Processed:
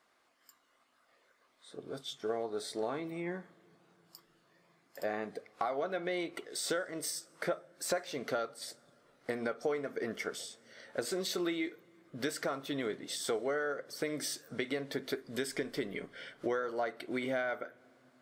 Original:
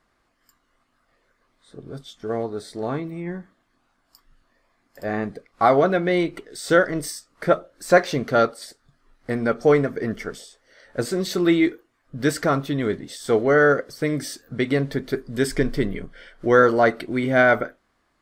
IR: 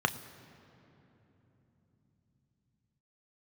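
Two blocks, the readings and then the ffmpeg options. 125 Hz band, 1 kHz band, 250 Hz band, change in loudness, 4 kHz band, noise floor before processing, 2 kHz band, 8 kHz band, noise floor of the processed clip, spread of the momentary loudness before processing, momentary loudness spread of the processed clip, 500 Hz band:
−21.0 dB, −16.5 dB, −16.0 dB, −15.5 dB, −6.5 dB, −69 dBFS, −15.5 dB, −5.0 dB, −72 dBFS, 16 LU, 10 LU, −15.0 dB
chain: -filter_complex "[0:a]highpass=frequency=780:poles=1,acompressor=threshold=-33dB:ratio=8,asplit=2[link_01][link_02];[1:a]atrim=start_sample=2205,asetrate=26460,aresample=44100[link_03];[link_02][link_03]afir=irnorm=-1:irlink=0,volume=-24.5dB[link_04];[link_01][link_04]amix=inputs=2:normalize=0"

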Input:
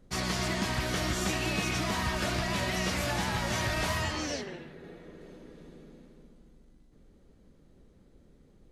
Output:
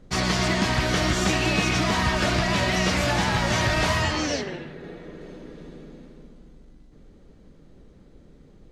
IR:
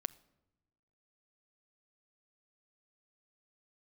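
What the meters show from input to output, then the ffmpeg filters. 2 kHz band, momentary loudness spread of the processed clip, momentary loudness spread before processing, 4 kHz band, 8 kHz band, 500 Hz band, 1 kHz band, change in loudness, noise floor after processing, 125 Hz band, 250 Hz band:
+8.0 dB, 19 LU, 19 LU, +7.5 dB, +5.5 dB, +8.0 dB, +8.0 dB, +8.0 dB, −52 dBFS, +8.0 dB, +8.5 dB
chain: -filter_complex "[0:a]asplit=2[link_01][link_02];[1:a]atrim=start_sample=2205,lowpass=8200[link_03];[link_02][link_03]afir=irnorm=-1:irlink=0,volume=5dB[link_04];[link_01][link_04]amix=inputs=2:normalize=0"

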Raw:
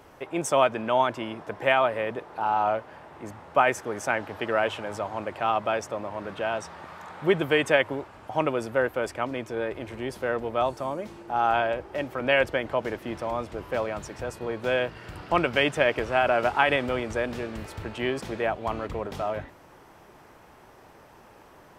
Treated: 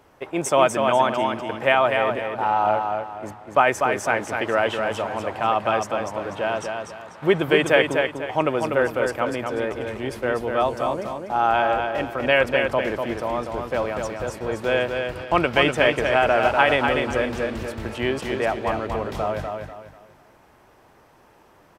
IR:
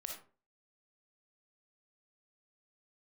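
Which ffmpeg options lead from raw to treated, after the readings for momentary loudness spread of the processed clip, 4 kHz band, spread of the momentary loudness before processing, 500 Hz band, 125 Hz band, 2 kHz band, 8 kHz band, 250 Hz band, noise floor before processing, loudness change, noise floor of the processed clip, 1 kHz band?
10 LU, +5.0 dB, 12 LU, +5.0 dB, +4.5 dB, +4.5 dB, +5.0 dB, +5.0 dB, −52 dBFS, +4.5 dB, −54 dBFS, +5.0 dB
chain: -filter_complex "[0:a]agate=range=-7dB:threshold=-40dB:ratio=16:detection=peak,asplit=2[link_01][link_02];[link_02]aecho=0:1:245|490|735|980:0.562|0.18|0.0576|0.0184[link_03];[link_01][link_03]amix=inputs=2:normalize=0,volume=3.5dB"

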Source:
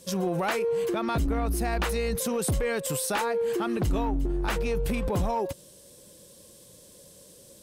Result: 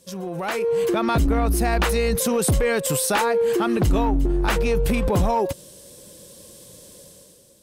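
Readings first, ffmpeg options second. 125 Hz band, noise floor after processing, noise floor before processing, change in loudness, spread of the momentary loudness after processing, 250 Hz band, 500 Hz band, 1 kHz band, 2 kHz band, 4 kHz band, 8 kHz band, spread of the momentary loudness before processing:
+6.5 dB, −50 dBFS, −53 dBFS, +6.5 dB, 4 LU, +6.5 dB, +6.5 dB, +6.5 dB, +6.5 dB, +6.5 dB, +7.0 dB, 2 LU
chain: -af "dynaudnorm=framelen=130:gausssize=9:maxgain=11dB,volume=-4dB"

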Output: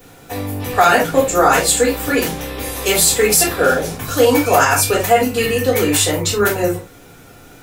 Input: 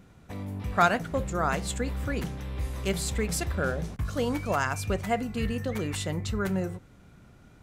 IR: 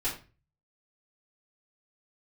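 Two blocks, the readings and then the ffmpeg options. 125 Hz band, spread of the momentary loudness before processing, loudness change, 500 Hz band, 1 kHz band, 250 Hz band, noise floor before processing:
+5.5 dB, 10 LU, +15.0 dB, +16.5 dB, +14.0 dB, +11.0 dB, −54 dBFS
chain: -filter_complex "[0:a]equalizer=frequency=530:width=3.3:gain=7,acrossover=split=130[link_01][link_02];[link_01]asoftclip=type=hard:threshold=-38.5dB[link_03];[link_03][link_02]amix=inputs=2:normalize=0,aemphasis=mode=production:type=bsi[link_04];[1:a]atrim=start_sample=2205,afade=type=out:start_time=0.14:duration=0.01,atrim=end_sample=6615[link_05];[link_04][link_05]afir=irnorm=-1:irlink=0,alimiter=level_in=10.5dB:limit=-1dB:release=50:level=0:latency=1,volume=-1dB"

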